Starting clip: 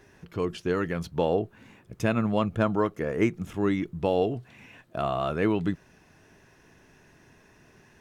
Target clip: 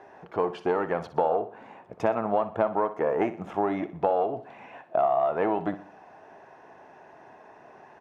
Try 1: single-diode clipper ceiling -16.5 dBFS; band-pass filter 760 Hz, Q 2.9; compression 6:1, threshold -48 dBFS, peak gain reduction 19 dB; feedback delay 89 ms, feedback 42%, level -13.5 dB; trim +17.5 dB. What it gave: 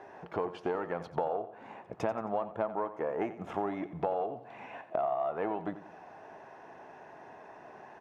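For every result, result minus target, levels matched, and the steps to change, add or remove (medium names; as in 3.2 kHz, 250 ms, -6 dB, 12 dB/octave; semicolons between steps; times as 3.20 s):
echo 28 ms late; compression: peak gain reduction +8 dB
change: feedback delay 61 ms, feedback 42%, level -13.5 dB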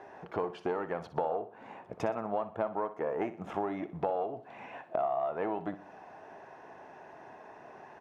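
compression: peak gain reduction +8 dB
change: compression 6:1, threshold -38.5 dBFS, peak gain reduction 11 dB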